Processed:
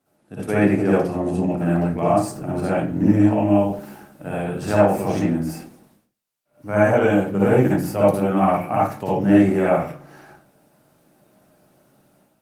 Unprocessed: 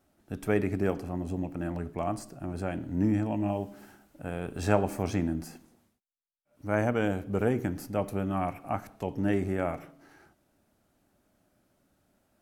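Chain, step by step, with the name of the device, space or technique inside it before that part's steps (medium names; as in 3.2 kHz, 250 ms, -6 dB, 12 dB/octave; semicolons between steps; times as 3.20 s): far-field microphone of a smart speaker (reverberation RT60 0.35 s, pre-delay 53 ms, DRR -7.5 dB; high-pass 110 Hz 24 dB/octave; level rider gain up to 8 dB; trim -1.5 dB; Opus 24 kbps 48 kHz)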